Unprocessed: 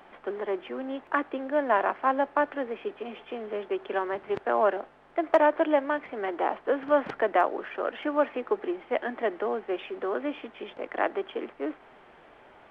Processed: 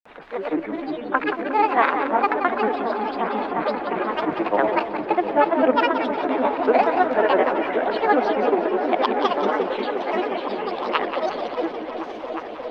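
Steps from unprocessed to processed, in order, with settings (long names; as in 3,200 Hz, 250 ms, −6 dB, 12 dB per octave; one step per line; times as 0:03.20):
pitch glide at a constant tempo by +5 semitones starting unshifted
granular cloud, pitch spread up and down by 7 semitones
echo whose low-pass opens from repeat to repeat 356 ms, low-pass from 200 Hz, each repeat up 1 octave, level 0 dB
feedback echo with a swinging delay time 180 ms, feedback 47%, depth 121 cents, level −9 dB
level +7.5 dB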